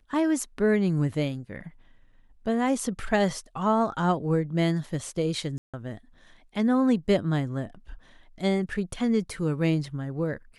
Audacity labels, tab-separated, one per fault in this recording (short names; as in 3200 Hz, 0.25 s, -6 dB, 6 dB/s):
5.580000	5.740000	gap 0.156 s